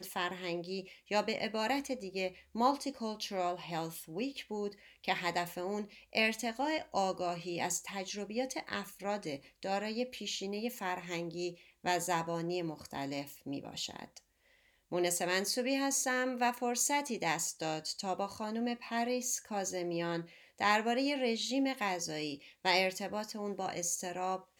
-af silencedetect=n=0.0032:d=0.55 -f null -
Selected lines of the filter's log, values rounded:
silence_start: 14.18
silence_end: 14.91 | silence_duration: 0.73